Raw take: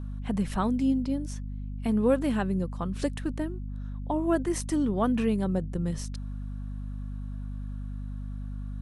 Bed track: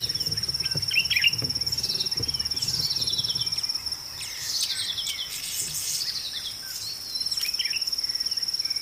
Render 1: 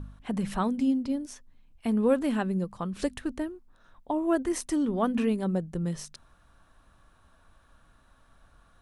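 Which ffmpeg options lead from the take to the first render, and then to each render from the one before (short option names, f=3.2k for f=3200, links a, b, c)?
-af "bandreject=f=50:t=h:w=4,bandreject=f=100:t=h:w=4,bandreject=f=150:t=h:w=4,bandreject=f=200:t=h:w=4,bandreject=f=250:t=h:w=4"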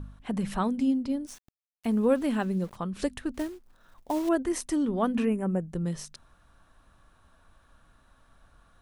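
-filter_complex "[0:a]asettb=1/sr,asplit=3[a][b][c];[a]atrim=end=1.274[d];[b]atrim=start=1.27:end=2.76,asetpts=PTS-STARTPTS,afade=t=in:d=0.004:c=qsin,afade=t=out:st=1.486:d=0.004:c=qsin,aeval=exprs='val(0)*gte(abs(val(0)),0.00447)':c=same[e];[c]atrim=start=2.756[f];[d][e]acrossfade=d=0.004:c1=hsin:c2=qsin[g];[g][f]acrossfade=d=0.004:c1=qsin:c2=hsin,asettb=1/sr,asplit=3[h][i][j];[h]atrim=end=3.344[k];[i]atrim=start=3.34:end=4.29,asetpts=PTS-STARTPTS,afade=t=in:d=0.004:c=qsin,afade=t=out:st=0.946:d=0.004:c=qsin,acrusher=bits=4:mode=log:mix=0:aa=0.000001[l];[j]atrim=start=4.286[m];[k][l]acrossfade=d=0.004:c1=hsin:c2=qsin[n];[n][m]acrossfade=d=0.004:c1=qsin:c2=hsin,asettb=1/sr,asplit=3[o][p][q];[o]atrim=end=5.254[r];[p]atrim=start=5.25:end=5.69,asetpts=PTS-STARTPTS,afade=t=in:d=0.004:c=qsin,afade=t=out:st=0.436:d=0.004:c=qsin,asuperstop=centerf=4100:order=8:qfactor=1.3[s];[q]atrim=start=5.686[t];[r][s]acrossfade=d=0.004:c1=hsin:c2=qsin[u];[u][t]acrossfade=d=0.004:c1=qsin:c2=hsin"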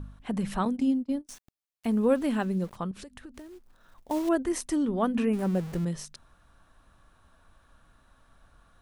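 -filter_complex "[0:a]asettb=1/sr,asplit=3[a][b][c];[a]atrim=end=0.654[d];[b]atrim=start=0.65:end=1.29,asetpts=PTS-STARTPTS,afade=t=in:d=0.004:c=qsin,afade=t=out:st=0.636:d=0.004:c=qsin,agate=range=-28dB:threshold=-33dB:ratio=16:release=100:detection=peak[e];[c]atrim=start=1.286[f];[d][e]acrossfade=d=0.004:c1=hsin:c2=qsin[g];[g][f]acrossfade=d=0.004:c1=qsin:c2=hsin,asettb=1/sr,asplit=3[h][i][j];[h]atrim=end=2.914[k];[i]atrim=start=2.91:end=4.11,asetpts=PTS-STARTPTS,afade=t=in:d=0.004:c=qsin,afade=t=out:st=1.196:d=0.004:c=qsin,acompressor=threshold=-41dB:ratio=12:attack=3.2:release=140:knee=1:detection=peak[l];[j]atrim=start=4.106[m];[k][l]acrossfade=d=0.004:c1=hsin:c2=qsin[n];[n][m]acrossfade=d=0.004:c1=qsin:c2=hsin,asettb=1/sr,asplit=3[o][p][q];[o]atrim=end=5.334[r];[p]atrim=start=5.33:end=5.85,asetpts=PTS-STARTPTS,afade=t=in:d=0.004:c=qsin,afade=t=out:st=0.516:d=0.004:c=qsin,aeval=exprs='val(0)+0.5*0.0141*sgn(val(0))':c=same[s];[q]atrim=start=5.846[t];[r][s]acrossfade=d=0.004:c1=hsin:c2=qsin[u];[u][t]acrossfade=d=0.004:c1=qsin:c2=hsin"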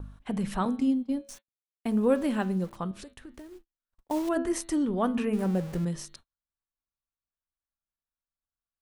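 -af "bandreject=f=111.4:t=h:w=4,bandreject=f=222.8:t=h:w=4,bandreject=f=334.2:t=h:w=4,bandreject=f=445.6:t=h:w=4,bandreject=f=557:t=h:w=4,bandreject=f=668.4:t=h:w=4,bandreject=f=779.8:t=h:w=4,bandreject=f=891.2:t=h:w=4,bandreject=f=1.0026k:t=h:w=4,bandreject=f=1.114k:t=h:w=4,bandreject=f=1.2254k:t=h:w=4,bandreject=f=1.3368k:t=h:w=4,bandreject=f=1.4482k:t=h:w=4,bandreject=f=1.5596k:t=h:w=4,bandreject=f=1.671k:t=h:w=4,bandreject=f=1.7824k:t=h:w=4,bandreject=f=1.8938k:t=h:w=4,bandreject=f=2.0052k:t=h:w=4,bandreject=f=2.1166k:t=h:w=4,bandreject=f=2.228k:t=h:w=4,bandreject=f=2.3394k:t=h:w=4,bandreject=f=2.4508k:t=h:w=4,bandreject=f=2.5622k:t=h:w=4,bandreject=f=2.6736k:t=h:w=4,bandreject=f=2.785k:t=h:w=4,bandreject=f=2.8964k:t=h:w=4,bandreject=f=3.0078k:t=h:w=4,bandreject=f=3.1192k:t=h:w=4,bandreject=f=3.2306k:t=h:w=4,bandreject=f=3.342k:t=h:w=4,bandreject=f=3.4534k:t=h:w=4,bandreject=f=3.5648k:t=h:w=4,bandreject=f=3.6762k:t=h:w=4,bandreject=f=3.7876k:t=h:w=4,bandreject=f=3.899k:t=h:w=4,bandreject=f=4.0104k:t=h:w=4,bandreject=f=4.1218k:t=h:w=4,bandreject=f=4.2332k:t=h:w=4,bandreject=f=4.3446k:t=h:w=4,agate=range=-41dB:threshold=-49dB:ratio=16:detection=peak"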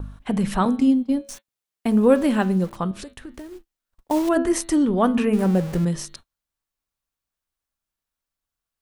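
-af "volume=8dB"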